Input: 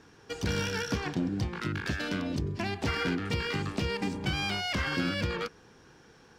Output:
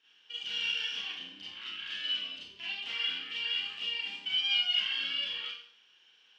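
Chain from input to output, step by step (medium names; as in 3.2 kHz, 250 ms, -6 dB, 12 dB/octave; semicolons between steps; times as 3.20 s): band-pass filter 3 kHz, Q 12; Schroeder reverb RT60 0.55 s, combs from 30 ms, DRR -8 dB; trim +5.5 dB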